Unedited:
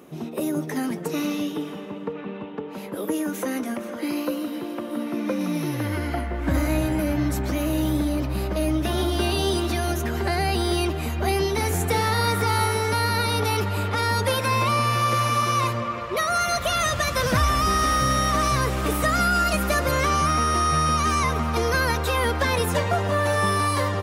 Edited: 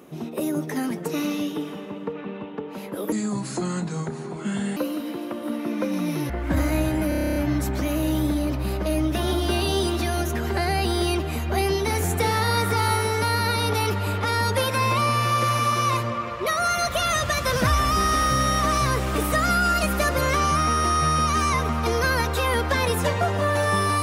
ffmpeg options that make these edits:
-filter_complex "[0:a]asplit=13[s0][s1][s2][s3][s4][s5][s6][s7][s8][s9][s10][s11][s12];[s0]atrim=end=3.124[s13];[s1]atrim=start=3.12:end=4.24,asetpts=PTS-STARTPTS,asetrate=29988,aresample=44100,atrim=end_sample=72635,asetpts=PTS-STARTPTS[s14];[s2]atrim=start=4.236:end=5.772[s15];[s3]atrim=start=6.268:end=7.092[s16];[s4]atrim=start=7.058:end=7.092[s17];[s5]atrim=start=7.058:end=7.092[s18];[s6]atrim=start=7.058:end=7.092[s19];[s7]atrim=start=7.058:end=7.092[s20];[s8]atrim=start=7.058:end=7.092[s21];[s9]atrim=start=7.058:end=7.092[s22];[s10]atrim=start=7.058:end=7.092[s23];[s11]atrim=start=7.058:end=7.092[s24];[s12]atrim=start=7.058[s25];[s13][s14]acrossfade=d=0.004:c1=hsin:c2=hsin[s26];[s26][s15]acrossfade=d=0.004:c1=hsin:c2=hsin[s27];[s27][s16]acrossfade=d=0.004:c1=hsin:c2=hsin[s28];[s28][s17]acrossfade=d=0.004:c1=hsin:c2=hsin[s29];[s29][s18]acrossfade=d=0.004:c1=hsin:c2=hsin[s30];[s30][s19]acrossfade=d=0.004:c1=hsin:c2=hsin[s31];[s31][s20]acrossfade=d=0.004:c1=hsin:c2=hsin[s32];[s32][s21]acrossfade=d=0.004:c1=hsin:c2=hsin[s33];[s33][s22]acrossfade=d=0.004:c1=hsin:c2=hsin[s34];[s34][s23]acrossfade=d=0.004:c1=hsin:c2=hsin[s35];[s35][s24]acrossfade=d=0.004:c1=hsin:c2=hsin[s36];[s36][s25]acrossfade=d=0.004:c1=hsin:c2=hsin"

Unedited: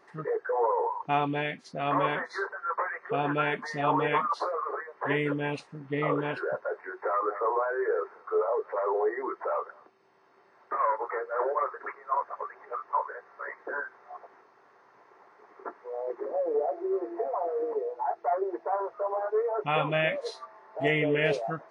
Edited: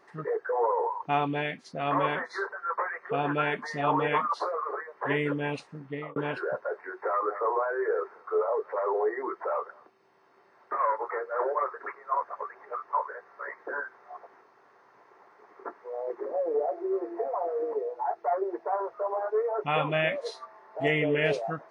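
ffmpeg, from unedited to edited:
-filter_complex "[0:a]asplit=2[s0][s1];[s0]atrim=end=6.16,asetpts=PTS-STARTPTS,afade=t=out:st=5.79:d=0.37[s2];[s1]atrim=start=6.16,asetpts=PTS-STARTPTS,afade=t=in:d=0.004:c=hsin[s3];[s2][s3]concat=n=2:v=0:a=1"

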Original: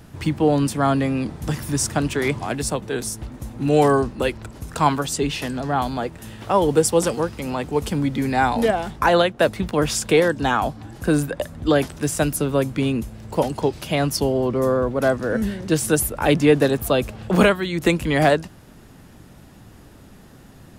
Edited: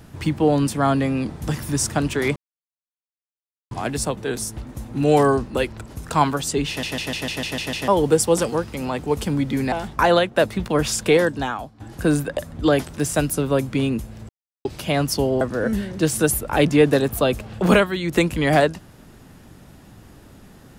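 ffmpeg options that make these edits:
-filter_complex "[0:a]asplit=15[s0][s1][s2][s3][s4][s5][s6][s7][s8][s9][s10][s11][s12][s13][s14];[s0]atrim=end=2.36,asetpts=PTS-STARTPTS,afade=t=out:st=2.356:d=0.004:c=hsin,apad=pad_dur=1.35[s15];[s1]atrim=start=2.36:end=5.482,asetpts=PTS-STARTPTS,afade=t=in:d=0.004:c=hsin[s16];[s2]atrim=start=5.328:end=5.482[s17];[s3]atrim=start=5.328:end=5.482[s18];[s4]atrim=start=5.328:end=5.482[s19];[s5]atrim=start=5.328:end=5.482[s20];[s6]atrim=start=5.328:end=5.482[s21];[s7]atrim=start=5.328:end=5.482[s22];[s8]atrim=start=5.328:end=5.482[s23];[s9]atrim=start=6.528:end=8.372[s24];[s10]atrim=start=8.748:end=10.83,asetpts=PTS-STARTPTS,afade=t=out:st=1.572:d=0.51:c=qua:silence=0.211349[s25];[s11]atrim=start=10.83:end=13.32,asetpts=PTS-STARTPTS,afade=t=in:d=0.004:c=hsin:silence=0.211349,afade=t=out:st=2.486:d=0.004:c=hsin[s26];[s12]atrim=start=13.32:end=13.68,asetpts=PTS-STARTPTS,volume=0[s27];[s13]atrim=start=13.68:end=14.442,asetpts=PTS-STARTPTS,afade=t=in:d=0.004:c=hsin[s28];[s14]atrim=start=15.098[s29];[s15][s16]concat=n=2:v=0:a=1[s30];[s30][s17]acrossfade=d=0.004:c1=hsin:c2=hsin[s31];[s31][s18]acrossfade=d=0.004:c1=hsin:c2=hsin[s32];[s32][s19]acrossfade=d=0.004:c1=hsin:c2=hsin[s33];[s33][s20]acrossfade=d=0.004:c1=hsin:c2=hsin[s34];[s34][s21]acrossfade=d=0.004:c1=hsin:c2=hsin[s35];[s35][s22]acrossfade=d=0.004:c1=hsin:c2=hsin[s36];[s36][s23]acrossfade=d=0.004:c1=hsin:c2=hsin[s37];[s37][s24]acrossfade=d=0.004:c1=hsin:c2=hsin[s38];[s25][s26][s27][s28]concat=n=4:v=0:a=1[s39];[s38][s39]acrossfade=d=0.004:c1=hsin:c2=hsin[s40];[s40][s29]acrossfade=d=0.004:c1=hsin:c2=hsin"

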